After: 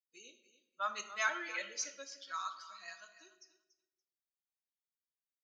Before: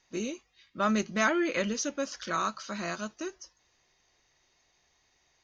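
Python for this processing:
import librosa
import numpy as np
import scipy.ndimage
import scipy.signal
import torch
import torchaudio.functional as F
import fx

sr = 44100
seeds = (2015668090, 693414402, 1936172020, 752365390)

y = fx.bin_expand(x, sr, power=2.0)
y = scipy.signal.sosfilt(scipy.signal.butter(2, 1100.0, 'highpass', fs=sr, output='sos'), y)
y = fx.echo_feedback(y, sr, ms=286, feedback_pct=15, wet_db=-15.0)
y = fx.room_shoebox(y, sr, seeds[0], volume_m3=270.0, walls='mixed', distance_m=0.49)
y = F.gain(torch.from_numpy(y), -3.0).numpy()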